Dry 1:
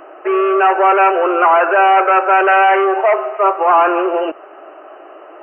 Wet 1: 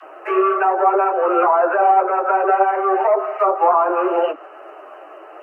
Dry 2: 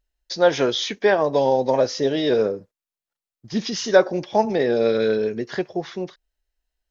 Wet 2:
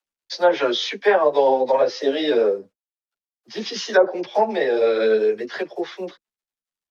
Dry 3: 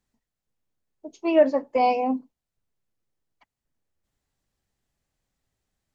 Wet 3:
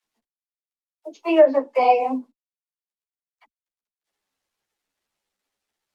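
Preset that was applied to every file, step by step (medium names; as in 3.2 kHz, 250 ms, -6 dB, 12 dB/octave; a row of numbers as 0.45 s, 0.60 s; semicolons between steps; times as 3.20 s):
three-band isolator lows -22 dB, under 300 Hz, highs -13 dB, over 5.4 kHz; companded quantiser 8-bit; low-pass that closes with the level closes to 830 Hz, closed at -9 dBFS; phase dispersion lows, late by 41 ms, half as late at 360 Hz; three-phase chorus; peak normalisation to -3 dBFS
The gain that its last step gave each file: +2.5 dB, +5.5 dB, +7.5 dB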